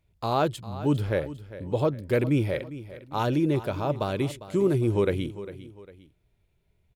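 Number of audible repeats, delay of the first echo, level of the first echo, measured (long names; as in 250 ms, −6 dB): 2, 402 ms, −15.0 dB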